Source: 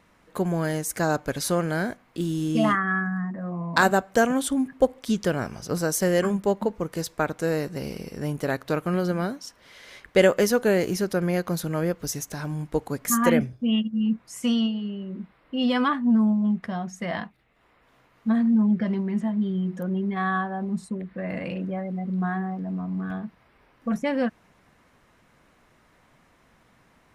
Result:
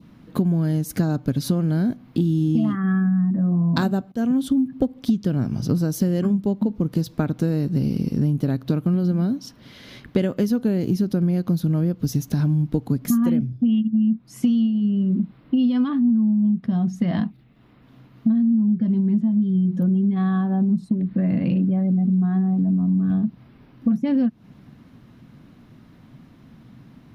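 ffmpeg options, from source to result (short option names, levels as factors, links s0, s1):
-filter_complex "[0:a]asplit=2[s0][s1];[s0]atrim=end=4.12,asetpts=PTS-STARTPTS,afade=t=out:st=4.116:d=0.004:c=hsin:silence=0.0749894[s2];[s1]atrim=start=4.12,asetpts=PTS-STARTPTS,afade=t=in:d=0.6:silence=0.0749894[s3];[s2][s3]concat=n=2:v=0:a=1,equalizer=f=125:t=o:w=1:g=12,equalizer=f=250:t=o:w=1:g=11,equalizer=f=500:t=o:w=1:g=-5,equalizer=f=1000:t=o:w=1:g=-4,equalizer=f=2000:t=o:w=1:g=-6,equalizer=f=4000:t=o:w=1:g=3,equalizer=f=8000:t=o:w=1:g=-12,acompressor=threshold=0.0708:ratio=10,adynamicequalizer=threshold=0.00251:dfrequency=1800:dqfactor=1.3:tfrequency=1800:tqfactor=1.3:attack=5:release=100:ratio=0.375:range=2:mode=cutabove:tftype=bell,volume=2"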